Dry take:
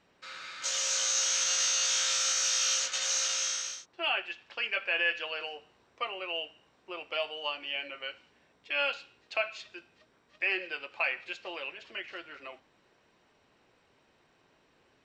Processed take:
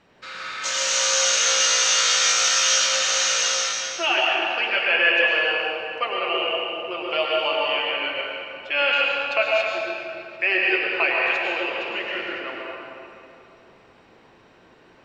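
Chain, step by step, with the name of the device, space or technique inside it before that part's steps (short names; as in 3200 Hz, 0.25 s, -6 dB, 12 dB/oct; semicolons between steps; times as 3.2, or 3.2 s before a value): swimming-pool hall (reverb RT60 2.9 s, pre-delay 95 ms, DRR -3.5 dB; high shelf 4900 Hz -7.5 dB); gain +9 dB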